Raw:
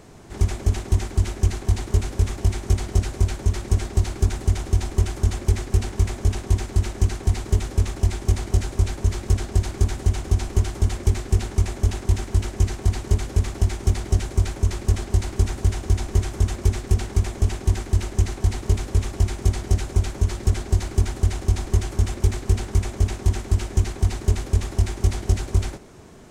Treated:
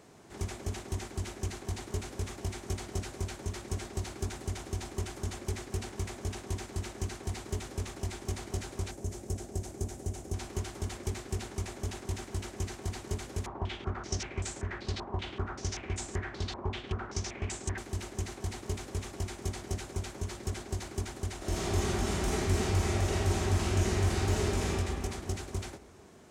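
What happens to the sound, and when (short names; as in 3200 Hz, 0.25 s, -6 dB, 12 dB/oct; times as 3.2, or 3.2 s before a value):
8.91–10.34 band shelf 2100 Hz -9.5 dB 2.6 oct
13.46–17.78 stepped low-pass 5.2 Hz 990–7700 Hz
21.37–24.67 reverb throw, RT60 2.4 s, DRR -9 dB
whole clip: HPF 200 Hz 6 dB/oct; gain -7.5 dB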